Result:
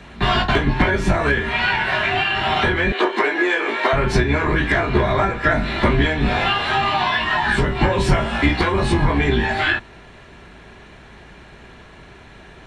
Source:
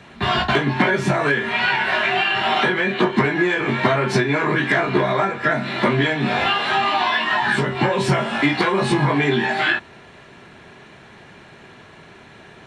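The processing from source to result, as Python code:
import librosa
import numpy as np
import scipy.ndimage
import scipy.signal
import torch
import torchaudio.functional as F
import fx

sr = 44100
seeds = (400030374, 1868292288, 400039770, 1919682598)

y = fx.octave_divider(x, sr, octaves=2, level_db=2.0)
y = fx.highpass(y, sr, hz=350.0, slope=24, at=(2.92, 3.93))
y = fx.rider(y, sr, range_db=10, speed_s=0.5)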